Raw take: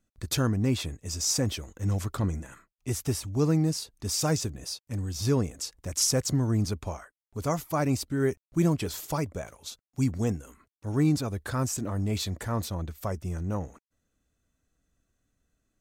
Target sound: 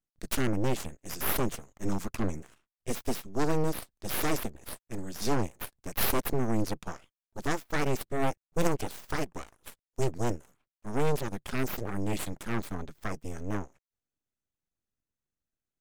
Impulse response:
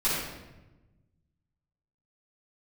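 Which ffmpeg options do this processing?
-af "aeval=exprs='abs(val(0))':c=same,aeval=exprs='0.224*(cos(1*acos(clip(val(0)/0.224,-1,1)))-cos(1*PI/2))+0.112*(cos(3*acos(clip(val(0)/0.224,-1,1)))-cos(3*PI/2))+0.0282*(cos(5*acos(clip(val(0)/0.224,-1,1)))-cos(5*PI/2))+0.0398*(cos(6*acos(clip(val(0)/0.224,-1,1)))-cos(6*PI/2))':c=same,volume=1.26"

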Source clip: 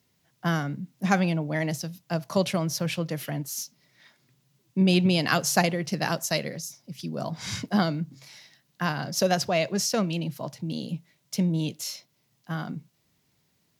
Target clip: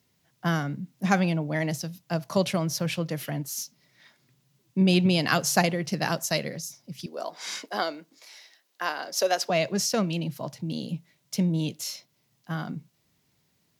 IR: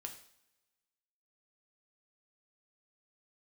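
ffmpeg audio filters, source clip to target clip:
-filter_complex "[0:a]asettb=1/sr,asplit=3[s0][s1][s2];[s0]atrim=end=7.064[s3];[s1]atrim=start=7.06:end=9.5,asetpts=PTS-STARTPTS,afade=t=in:d=0.004:c=qsin,afade=t=out:st=2.436:d=0.004:c=qsin,highpass=f=360:w=0.5412,highpass=f=360:w=1.3066[s4];[s2]atrim=start=9.496[s5];[s3][s4]acrossfade=d=0.004:c1=hsin:c2=qsin[s6];[s6][s5]acrossfade=d=0.004:c1=qsin:c2=hsin"

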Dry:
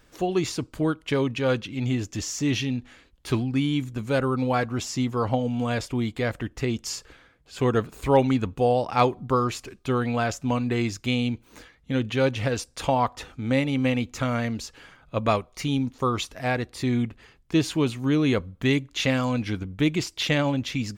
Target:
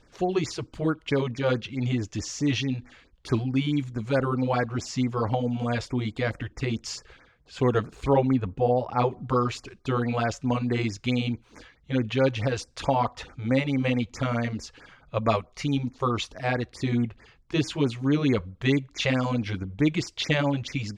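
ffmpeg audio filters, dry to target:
-filter_complex "[0:a]lowpass=5800,asettb=1/sr,asplit=3[s0][s1][s2];[s0]atrim=end=8.134[s3];[s1]atrim=start=8.13:end=9.11,asetpts=PTS-STARTPTS,afade=t=in:d=0.004:c=qsin,afade=t=out:st=0.976:d=0.004:c=qsin,highshelf=f=2100:g=-11.5[s4];[s2]atrim=start=9.106[s5];[s3][s4]acrossfade=d=0.004:c1=hsin:c2=qsin[s6];[s6][s5]acrossfade=d=0.004:c1=qsin:c2=hsin,afftfilt=real='re*(1-between(b*sr/1024,220*pow(3600/220,0.5+0.5*sin(2*PI*4.6*pts/sr))/1.41,220*pow(3600/220,0.5+0.5*sin(2*PI*4.6*pts/sr))*1.41))':imag='im*(1-between(b*sr/1024,220*pow(3600/220,0.5+0.5*sin(2*PI*4.6*pts/sr))/1.41,220*pow(3600/220,0.5+0.5*sin(2*PI*4.6*pts/sr))*1.41))':win_size=1024:overlap=0.75"

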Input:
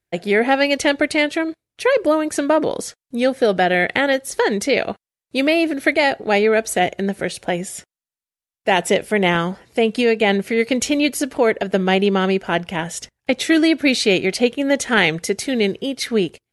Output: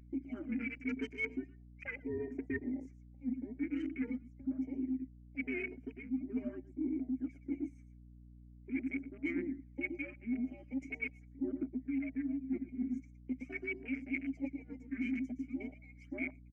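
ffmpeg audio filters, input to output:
-filter_complex "[0:a]afftfilt=real='real(if(between(b,1,1008),(2*floor((b-1)/48)+1)*48-b,b),0)':imag='imag(if(between(b,1,1008),(2*floor((b-1)/48)+1)*48-b,b),0)*if(between(b,1,1008),-1,1)':win_size=2048:overlap=0.75,asplit=3[s0][s1][s2];[s0]bandpass=f=270:t=q:w=8,volume=1[s3];[s1]bandpass=f=2290:t=q:w=8,volume=0.501[s4];[s2]bandpass=f=3010:t=q:w=8,volume=0.355[s5];[s3][s4][s5]amix=inputs=3:normalize=0,asplit=2[s6][s7];[s7]aecho=0:1:116:0.266[s8];[s6][s8]amix=inputs=2:normalize=0,acompressor=mode=upward:threshold=0.00251:ratio=2.5,aphaser=in_gain=1:out_gain=1:delay=4.6:decay=0.64:speed=0.43:type=sinusoidal,highpass=47,equalizer=f=3100:w=0.97:g=-10.5,aecho=1:1:4.9:0.42,afwtdn=0.0112,firequalizer=gain_entry='entry(110,0);entry(170,-25);entry(260,12);entry(430,-14);entry(1100,-11);entry(2200,5);entry(3400,-30);entry(6100,-4);entry(10000,-16)':delay=0.05:min_phase=1,areverse,acompressor=threshold=0.0141:ratio=20,areverse,aeval=exprs='val(0)+0.00126*(sin(2*PI*60*n/s)+sin(2*PI*2*60*n/s)/2+sin(2*PI*3*60*n/s)/3+sin(2*PI*4*60*n/s)/4+sin(2*PI*5*60*n/s)/5)':c=same,volume=1.5"

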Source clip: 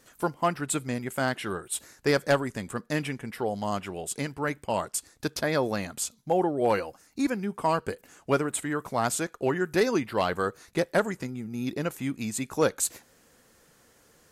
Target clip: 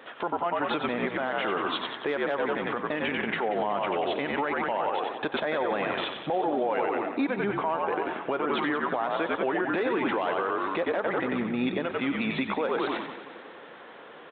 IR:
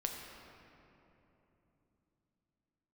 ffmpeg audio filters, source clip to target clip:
-filter_complex "[0:a]aresample=8000,aresample=44100,asplit=2[s0][s1];[s1]asplit=5[s2][s3][s4][s5][s6];[s2]adelay=92,afreqshift=-63,volume=0.447[s7];[s3]adelay=184,afreqshift=-126,volume=0.207[s8];[s4]adelay=276,afreqshift=-189,volume=0.0944[s9];[s5]adelay=368,afreqshift=-252,volume=0.0437[s10];[s6]adelay=460,afreqshift=-315,volume=0.02[s11];[s7][s8][s9][s10][s11]amix=inputs=5:normalize=0[s12];[s0][s12]amix=inputs=2:normalize=0,acontrast=55,equalizer=f=840:t=o:w=1.1:g=5,acompressor=threshold=0.0631:ratio=6,highpass=320,alimiter=level_in=1.26:limit=0.0631:level=0:latency=1:release=66,volume=0.794,asplit=2[s13][s14];[s14]aecho=0:1:184|368|552|736|920|1104:0.2|0.118|0.0695|0.041|0.0242|0.0143[s15];[s13][s15]amix=inputs=2:normalize=0,volume=2.37"

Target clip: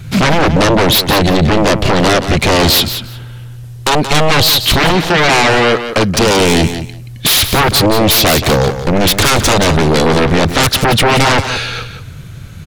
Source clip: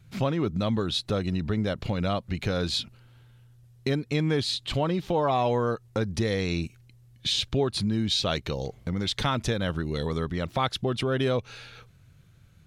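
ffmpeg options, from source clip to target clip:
-filter_complex "[0:a]asettb=1/sr,asplit=3[s0][s1][s2];[s0]atrim=end=4.904[s3];[s1]atrim=start=4.9:end=6.31,asetpts=PTS-STARTPTS,afade=t=in:d=0.004:c=qsin,afade=t=out:st=1.406:d=0.004:c=qsin,highpass=f=280:p=1[s4];[s2]atrim=start=6.306[s5];[s3][s4]acrossfade=d=0.004:c1=hsin:c2=qsin[s6];[s6][s5]acrossfade=d=0.004:c1=qsin:c2=hsin,aeval=exprs='0.237*sin(PI/2*6.31*val(0)/0.237)':c=same,aecho=1:1:177|354:0.316|0.0506,volume=1.88"

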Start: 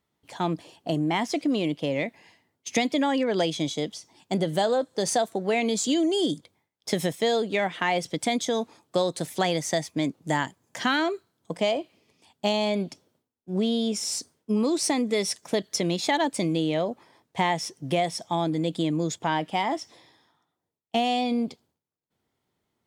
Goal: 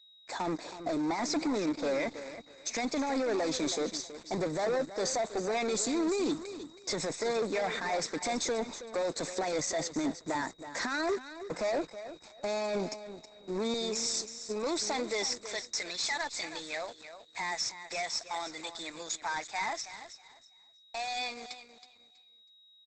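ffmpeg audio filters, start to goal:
-af "asetnsamples=n=441:p=0,asendcmd='13.74 highpass f 650;15.26 highpass f 1500',highpass=310,adynamicequalizer=threshold=0.00316:dfrequency=9700:dqfactor=2.6:tfrequency=9700:tqfactor=2.6:attack=5:release=100:ratio=0.375:range=2:mode=boostabove:tftype=bell,alimiter=limit=0.0708:level=0:latency=1:release=11,asoftclip=type=tanh:threshold=0.0188,acrusher=bits=8:mix=0:aa=0.000001,aeval=exprs='val(0)+0.000708*sin(2*PI*3800*n/s)':c=same,asuperstop=centerf=3000:order=20:qfactor=3.5,aecho=1:1:322|644|966:0.266|0.0612|0.0141,volume=2.24" -ar 48000 -c:a libopus -b:a 12k

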